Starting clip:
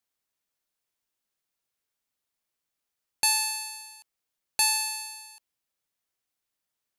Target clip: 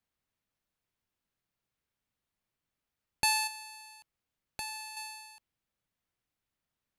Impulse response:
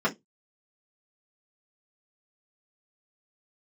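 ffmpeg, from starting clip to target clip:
-filter_complex "[0:a]bass=f=250:g=10,treble=f=4000:g=-8,asettb=1/sr,asplit=3[s0][s1][s2];[s0]atrim=end=3.474[s3];[s1]atrim=start=3.47:end=4.97,asetpts=PTS-STARTPTS,afade=t=in:d=0.004:c=qsin,afade=t=out:st=1.496:d=0.004:c=qsin,acompressor=threshold=0.00447:ratio=2[s4];[s2]atrim=start=4.966[s5];[s3][s4]acrossfade=d=0.004:c1=hsin:c2=qsin[s6];[s6][s5]acrossfade=d=0.004:c1=qsin:c2=hsin"

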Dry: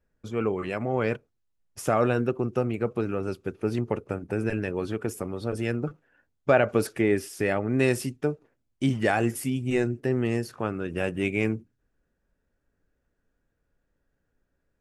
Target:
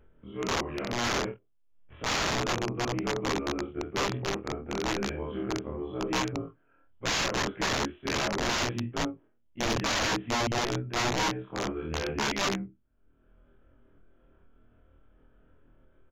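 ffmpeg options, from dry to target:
-filter_complex "[0:a]afftfilt=real='re':imag='-im':win_size=2048:overlap=0.75,asplit=2[s0][s1];[s1]adelay=23,volume=0.631[s2];[s0][s2]amix=inputs=2:normalize=0,asplit=2[s3][s4];[s4]aecho=0:1:26|58:0.562|0.631[s5];[s3][s5]amix=inputs=2:normalize=0,aresample=8000,aresample=44100,acompressor=mode=upward:threshold=0.00891:ratio=2.5,aresample=16000,aeval=exprs='(mod(11.2*val(0)+1,2)-1)/11.2':c=same,aresample=44100,asetrate=40517,aresample=44100,aeval=exprs='0.15*(cos(1*acos(clip(val(0)/0.15,-1,1)))-cos(1*PI/2))+0.00531*(cos(2*acos(clip(val(0)/0.15,-1,1)))-cos(2*PI/2))+0.0188*(cos(3*acos(clip(val(0)/0.15,-1,1)))-cos(3*PI/2))+0.00266*(cos(5*acos(clip(val(0)/0.15,-1,1)))-cos(5*PI/2))':c=same"

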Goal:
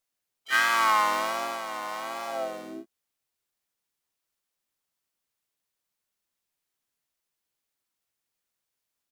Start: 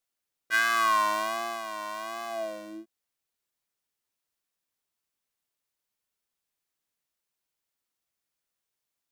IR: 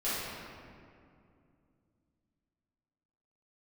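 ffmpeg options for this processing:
-filter_complex "[0:a]acrusher=bits=9:mode=log:mix=0:aa=0.000001,asplit=4[s0][s1][s2][s3];[s1]asetrate=35002,aresample=44100,atempo=1.25992,volume=0.447[s4];[s2]asetrate=52444,aresample=44100,atempo=0.840896,volume=0.447[s5];[s3]asetrate=88200,aresample=44100,atempo=0.5,volume=0.2[s6];[s0][s4][s5][s6]amix=inputs=4:normalize=0"

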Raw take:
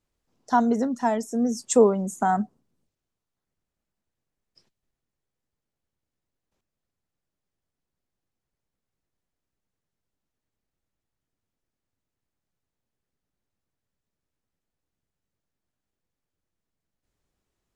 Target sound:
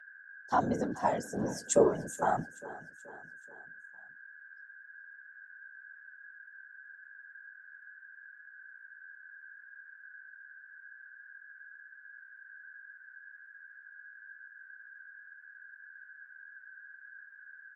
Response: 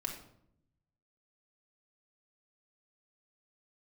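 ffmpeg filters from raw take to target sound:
-filter_complex "[0:a]agate=range=0.0891:threshold=0.00562:ratio=16:detection=peak,aeval=exprs='val(0)+0.00708*sin(2*PI*1600*n/s)':c=same,highpass=280,afftfilt=real='hypot(re,im)*cos(2*PI*random(0))':imag='hypot(re,im)*sin(2*PI*random(1))':win_size=512:overlap=0.75,asplit=2[s0][s1];[s1]aecho=0:1:429|858|1287|1716:0.119|0.0582|0.0285|0.014[s2];[s0][s2]amix=inputs=2:normalize=0"

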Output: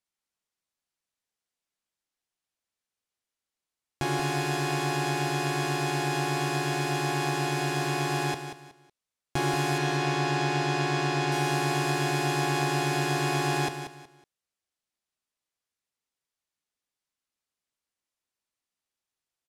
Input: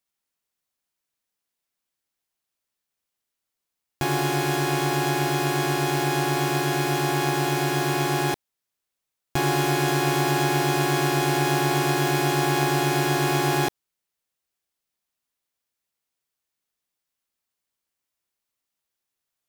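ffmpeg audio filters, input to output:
-filter_complex "[0:a]asettb=1/sr,asplit=3[s0][s1][s2];[s0]atrim=end=9.784[s3];[s1]atrim=start=9.78:end=11.32,asetpts=PTS-STARTPTS,afade=t=in:d=0.004:c=qsin,afade=t=out:st=1.536:d=0.004:c=qsin,acrossover=split=7300[s4][s5];[s5]acompressor=threshold=0.00355:ratio=4:attack=1:release=60[s6];[s4][s6]amix=inputs=2:normalize=0[s7];[s2]atrim=start=11.316[s8];[s3][s7]acrossfade=d=0.004:c1=hsin:c2=qsin[s9];[s9][s8]acrossfade=d=0.004:c1=qsin:c2=hsin,lowpass=10000,aecho=1:1:185|370|555:0.335|0.0938|0.0263,volume=0.631"

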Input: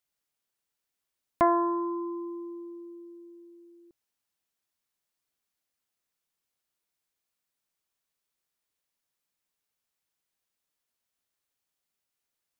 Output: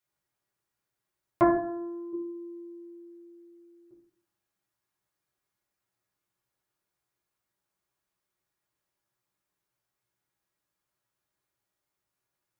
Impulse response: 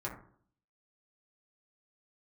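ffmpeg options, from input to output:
-filter_complex "[0:a]asettb=1/sr,asplit=3[s0][s1][s2];[s0]atrim=end=1.554[s3];[s1]atrim=start=1.55:end=2.13,asetpts=PTS-STARTPTS,afade=t=in:d=0.004:c=qsin,afade=t=out:st=0.576:d=0.004:c=qsin,equalizer=f=160:t=o:w=1.3:g=-10.5[s4];[s2]atrim=start=2.126[s5];[s3][s4]acrossfade=d=0.004:c1=hsin:c2=qsin[s6];[s6][s5]acrossfade=d=0.004:c1=qsin:c2=hsin[s7];[1:a]atrim=start_sample=2205[s8];[s7][s8]afir=irnorm=-1:irlink=0,volume=1.12"

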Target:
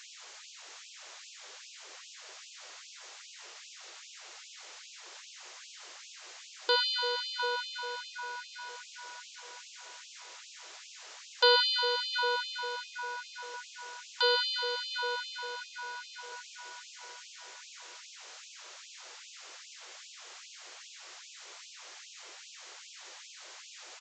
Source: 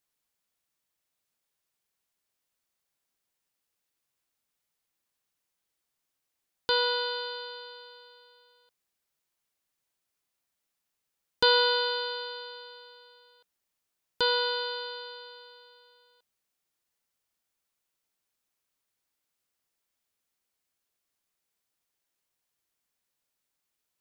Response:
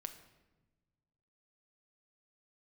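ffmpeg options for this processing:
-filter_complex "[0:a]aeval=exprs='val(0)+0.5*0.015*sgn(val(0))':c=same,asplit=2[s0][s1];[s1]adelay=705,lowpass=f=2400:p=1,volume=0.562,asplit=2[s2][s3];[s3]adelay=705,lowpass=f=2400:p=1,volume=0.49,asplit=2[s4][s5];[s5]adelay=705,lowpass=f=2400:p=1,volume=0.49,asplit=2[s6][s7];[s7]adelay=705,lowpass=f=2400:p=1,volume=0.49,asplit=2[s8][s9];[s9]adelay=705,lowpass=f=2400:p=1,volume=0.49,asplit=2[s10][s11];[s11]adelay=705,lowpass=f=2400:p=1,volume=0.49[s12];[s0][s2][s4][s6][s8][s10][s12]amix=inputs=7:normalize=0,asplit=2[s13][s14];[1:a]atrim=start_sample=2205,adelay=8[s15];[s14][s15]afir=irnorm=-1:irlink=0,volume=0.299[s16];[s13][s16]amix=inputs=2:normalize=0,aresample=16000,aresample=44100,afftfilt=real='re*gte(b*sr/1024,300*pow(2500/300,0.5+0.5*sin(2*PI*2.5*pts/sr)))':imag='im*gte(b*sr/1024,300*pow(2500/300,0.5+0.5*sin(2*PI*2.5*pts/sr)))':win_size=1024:overlap=0.75,volume=0.794"

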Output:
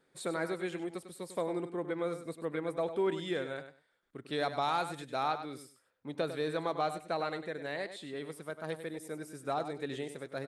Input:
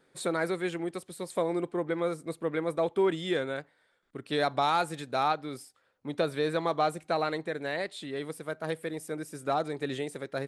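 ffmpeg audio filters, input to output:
-af "aecho=1:1:99|198:0.299|0.0537,volume=0.531"

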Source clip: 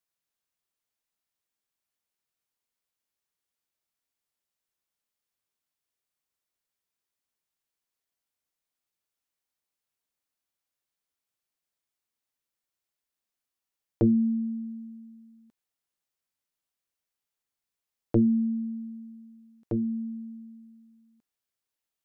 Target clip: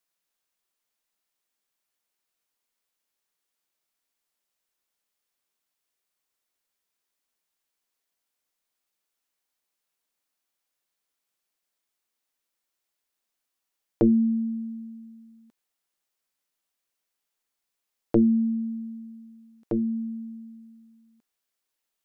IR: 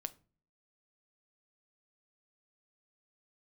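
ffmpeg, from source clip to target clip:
-af "equalizer=f=88:t=o:w=1.6:g=-11,volume=1.78"

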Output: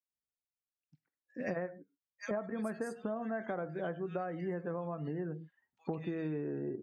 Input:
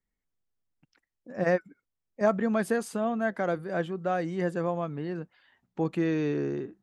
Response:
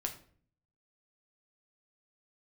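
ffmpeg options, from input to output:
-filter_complex "[0:a]asplit=2[s0][s1];[1:a]atrim=start_sample=2205,atrim=end_sample=6615[s2];[s1][s2]afir=irnorm=-1:irlink=0,volume=0.841[s3];[s0][s3]amix=inputs=2:normalize=0,afftdn=nr=23:nf=-42,highpass=47,acrossover=split=2400[s4][s5];[s4]adelay=100[s6];[s6][s5]amix=inputs=2:normalize=0,acompressor=threshold=0.02:ratio=12"

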